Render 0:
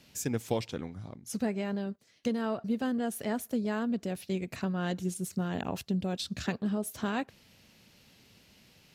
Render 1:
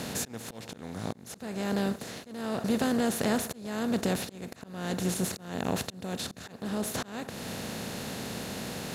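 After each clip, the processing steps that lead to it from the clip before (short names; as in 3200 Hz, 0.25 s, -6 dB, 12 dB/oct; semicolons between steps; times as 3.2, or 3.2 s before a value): per-bin compression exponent 0.4; auto swell 0.457 s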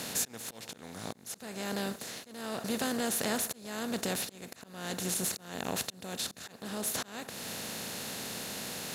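tilt +2 dB/oct; gain -3 dB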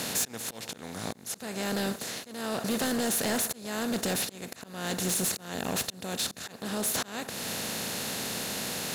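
hard clip -29.5 dBFS, distortion -12 dB; gain +5.5 dB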